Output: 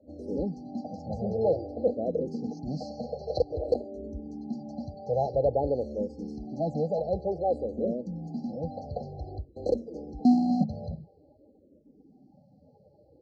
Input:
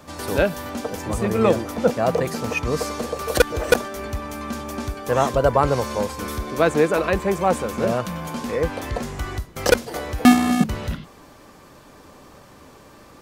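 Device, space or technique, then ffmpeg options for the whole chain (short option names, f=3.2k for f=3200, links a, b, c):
barber-pole phaser into a guitar amplifier: -filter_complex "[0:a]afftdn=nr=18:nf=-41,asplit=2[a][b];[b]afreqshift=-0.52[c];[a][c]amix=inputs=2:normalize=1,asoftclip=type=tanh:threshold=-12dB,highpass=79,equalizer=f=110:t=q:w=4:g=-6,equalizer=f=370:t=q:w=4:g=-5,equalizer=f=680:t=q:w=4:g=-3,equalizer=f=1.7k:t=q:w=4:g=-7,lowpass=f=3.8k:w=0.5412,lowpass=f=3.8k:w=1.3066,afftfilt=real='re*(1-between(b*sr/4096,840,4000))':imag='im*(1-between(b*sr/4096,840,4000))':win_size=4096:overlap=0.75,volume=-2dB"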